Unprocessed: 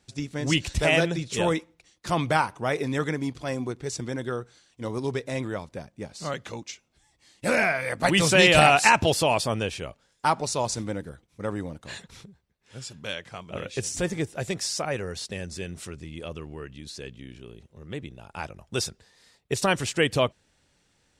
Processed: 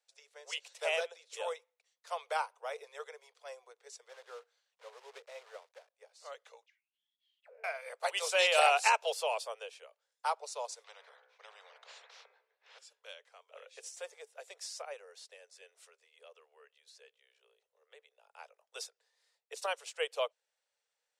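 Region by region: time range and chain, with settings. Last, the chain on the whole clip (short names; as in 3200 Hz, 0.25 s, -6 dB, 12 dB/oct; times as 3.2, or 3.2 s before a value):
4.09–5.95 block floating point 3-bit + air absorption 72 m
6.66–7.64 G.711 law mismatch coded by mu + weighting filter A + auto-wah 440–3600 Hz, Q 13, down, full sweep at -24 dBFS
10.84–12.79 air absorption 240 m + de-hum 63.73 Hz, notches 40 + spectral compressor 4:1
whole clip: steep high-pass 440 Hz 96 dB/oct; dynamic EQ 1800 Hz, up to -6 dB, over -43 dBFS, Q 3.6; upward expander 1.5:1, over -37 dBFS; gain -7 dB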